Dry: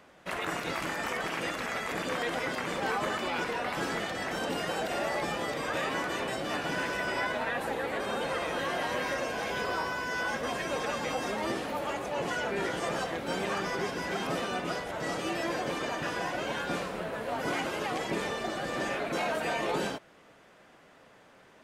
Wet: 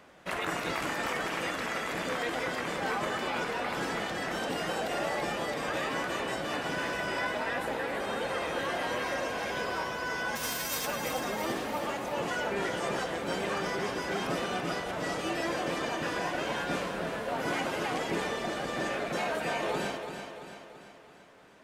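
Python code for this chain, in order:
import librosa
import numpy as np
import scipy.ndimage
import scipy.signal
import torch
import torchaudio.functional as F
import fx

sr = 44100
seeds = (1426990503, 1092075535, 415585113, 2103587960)

y = fx.envelope_flatten(x, sr, power=0.3, at=(10.35, 10.85), fade=0.02)
y = fx.rider(y, sr, range_db=3, speed_s=2.0)
y = fx.echo_feedback(y, sr, ms=336, feedback_pct=52, wet_db=-8)
y = y * 10.0 ** (-1.0 / 20.0)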